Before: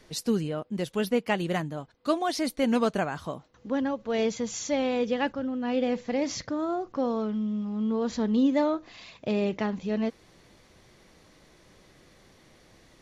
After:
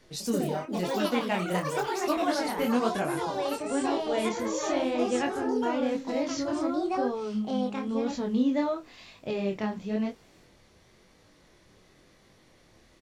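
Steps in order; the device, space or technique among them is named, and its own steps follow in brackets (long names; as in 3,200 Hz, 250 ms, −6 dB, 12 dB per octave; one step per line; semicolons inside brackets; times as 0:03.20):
delay with pitch and tempo change per echo 116 ms, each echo +4 semitones, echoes 3
double-tracked vocal (double-tracking delay 28 ms −13 dB; chorus effect 0.98 Hz, delay 20 ms, depth 7.8 ms)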